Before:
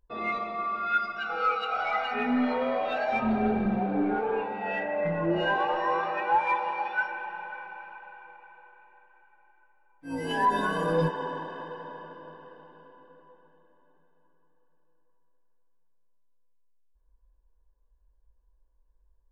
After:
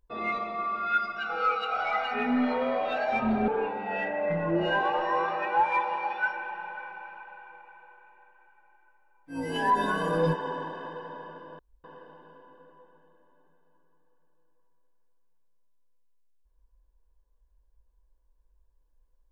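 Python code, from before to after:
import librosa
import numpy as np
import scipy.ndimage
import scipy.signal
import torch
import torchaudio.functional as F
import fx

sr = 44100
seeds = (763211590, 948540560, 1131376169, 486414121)

y = fx.edit(x, sr, fx.cut(start_s=3.48, length_s=0.75),
    fx.insert_room_tone(at_s=12.34, length_s=0.25), tone=tone)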